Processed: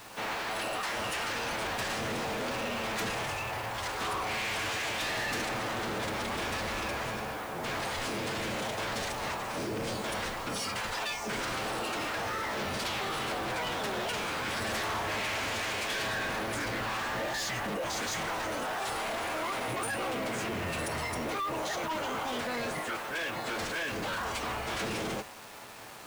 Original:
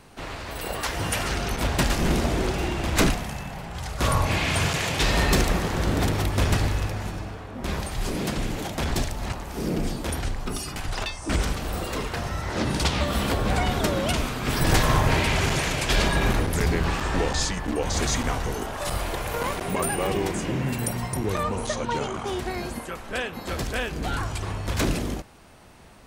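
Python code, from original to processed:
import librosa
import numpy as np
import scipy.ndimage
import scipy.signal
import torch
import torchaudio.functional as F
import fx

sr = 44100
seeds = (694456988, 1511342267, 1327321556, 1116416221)

p1 = fx.highpass(x, sr, hz=770.0, slope=6)
p2 = fx.high_shelf(p1, sr, hz=4600.0, db=-10.5)
p3 = p2 + 0.38 * np.pad(p2, (int(6.1 * sr / 1000.0), 0))[:len(p2)]
p4 = fx.over_compress(p3, sr, threshold_db=-38.0, ratio=-1.0)
p5 = p3 + (p4 * librosa.db_to_amplitude(0.5))
p6 = 10.0 ** (-16.0 / 20.0) * (np.abs((p5 / 10.0 ** (-16.0 / 20.0) + 3.0) % 4.0 - 2.0) - 1.0)
p7 = fx.pitch_keep_formants(p6, sr, semitones=-7.0)
p8 = 10.0 ** (-29.5 / 20.0) * np.tanh(p7 / 10.0 ** (-29.5 / 20.0))
y = fx.quant_dither(p8, sr, seeds[0], bits=8, dither='none')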